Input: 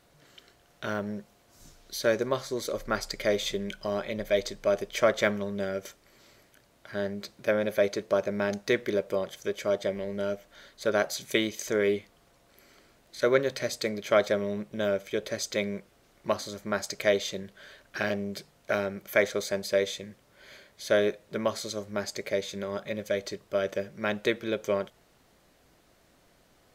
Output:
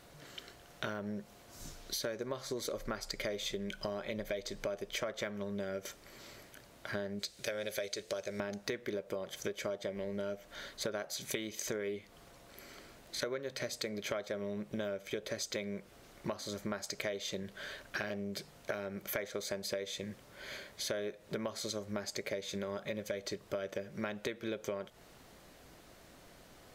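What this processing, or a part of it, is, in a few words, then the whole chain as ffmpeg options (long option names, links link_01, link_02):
serial compression, leveller first: -filter_complex "[0:a]asettb=1/sr,asplit=3[link_01][link_02][link_03];[link_01]atrim=end=7.194[link_04];[link_02]atrim=start=7.19:end=8.4,asetpts=PTS-STARTPTS,afade=type=in:duration=0.004:curve=qsin,afade=type=out:start_time=1.206:duration=0.004:curve=qsin,equalizer=frequency=125:width_type=o:width=1:gain=-5,equalizer=frequency=250:width_type=o:width=1:gain=-11,equalizer=frequency=1000:width_type=o:width=1:gain=-8,equalizer=frequency=4000:width_type=o:width=1:gain=5,equalizer=frequency=8000:width_type=o:width=1:gain=9[link_05];[link_03]atrim=start=8.396[link_06];[link_04][link_05]acrossfade=duration=0.004:curve1=hsin:curve2=qsin[link_07];[link_07][link_06]acrossfade=duration=0.004:curve1=qsin:curve2=hsin,acompressor=threshold=-31dB:ratio=2,acompressor=threshold=-41dB:ratio=5,volume=5dB"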